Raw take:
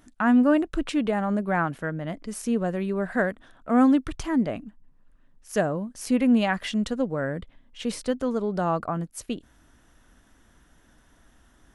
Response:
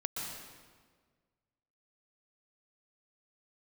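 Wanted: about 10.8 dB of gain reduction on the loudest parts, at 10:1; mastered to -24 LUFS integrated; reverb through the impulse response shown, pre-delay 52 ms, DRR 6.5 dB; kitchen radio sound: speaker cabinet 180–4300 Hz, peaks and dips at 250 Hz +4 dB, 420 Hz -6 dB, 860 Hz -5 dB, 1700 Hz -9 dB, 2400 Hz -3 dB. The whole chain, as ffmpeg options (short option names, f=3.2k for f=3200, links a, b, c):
-filter_complex "[0:a]acompressor=threshold=-26dB:ratio=10,asplit=2[a][b];[1:a]atrim=start_sample=2205,adelay=52[c];[b][c]afir=irnorm=-1:irlink=0,volume=-9dB[d];[a][d]amix=inputs=2:normalize=0,highpass=180,equalizer=f=250:t=q:w=4:g=4,equalizer=f=420:t=q:w=4:g=-6,equalizer=f=860:t=q:w=4:g=-5,equalizer=f=1.7k:t=q:w=4:g=-9,equalizer=f=2.4k:t=q:w=4:g=-3,lowpass=f=4.3k:w=0.5412,lowpass=f=4.3k:w=1.3066,volume=7.5dB"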